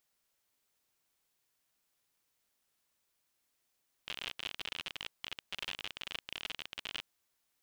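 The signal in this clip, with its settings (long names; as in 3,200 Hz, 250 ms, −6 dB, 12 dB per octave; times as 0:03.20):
Geiger counter clicks 52 per second −23.5 dBFS 2.97 s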